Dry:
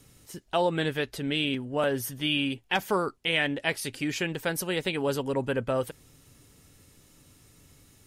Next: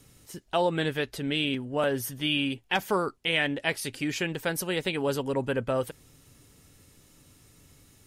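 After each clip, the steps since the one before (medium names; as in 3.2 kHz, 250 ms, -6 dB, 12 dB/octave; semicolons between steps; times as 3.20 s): no audible change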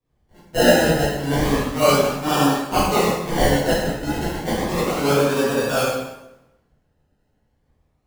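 decimation with a swept rate 30×, swing 60% 0.32 Hz; plate-style reverb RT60 1.4 s, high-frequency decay 0.8×, DRR -10 dB; three bands expanded up and down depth 70%; trim -1 dB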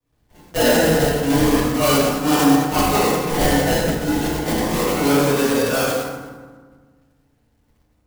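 block-companded coder 3-bit; saturation -11.5 dBFS, distortion -15 dB; FDN reverb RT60 1.5 s, low-frequency decay 1.4×, high-frequency decay 0.4×, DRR 2.5 dB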